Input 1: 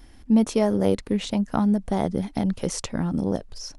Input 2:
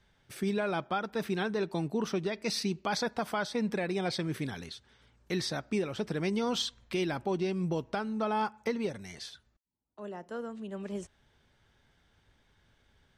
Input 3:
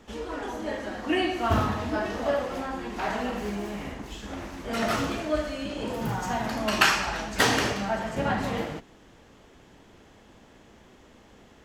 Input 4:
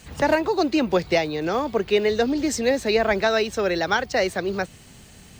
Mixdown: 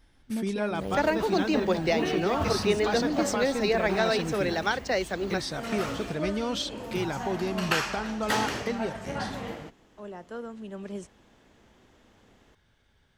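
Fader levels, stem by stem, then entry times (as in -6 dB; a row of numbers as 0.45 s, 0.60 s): -14.0 dB, +0.5 dB, -6.5 dB, -5.5 dB; 0.00 s, 0.00 s, 0.90 s, 0.75 s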